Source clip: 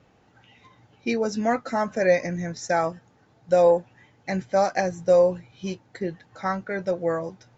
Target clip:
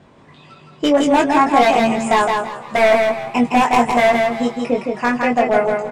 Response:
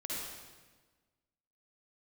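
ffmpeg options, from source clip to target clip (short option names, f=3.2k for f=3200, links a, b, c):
-filter_complex "[0:a]acontrast=84,aeval=exprs='0.282*(abs(mod(val(0)/0.282+3,4)-2)-1)':c=same,highshelf=f=2.5k:g=-8,asplit=2[a][b];[b]aecho=0:1:210|420|630|840:0.631|0.164|0.0427|0.0111[c];[a][c]amix=inputs=2:normalize=0,asetrate=56448,aresample=44100,asplit=2[d][e];[e]adelay=21,volume=-4dB[f];[d][f]amix=inputs=2:normalize=0,asplit=2[g][h];[h]asplit=4[i][j][k][l];[i]adelay=351,afreqshift=130,volume=-20.5dB[m];[j]adelay=702,afreqshift=260,volume=-26.3dB[n];[k]adelay=1053,afreqshift=390,volume=-32.2dB[o];[l]adelay=1404,afreqshift=520,volume=-38dB[p];[m][n][o][p]amix=inputs=4:normalize=0[q];[g][q]amix=inputs=2:normalize=0,volume=2.5dB"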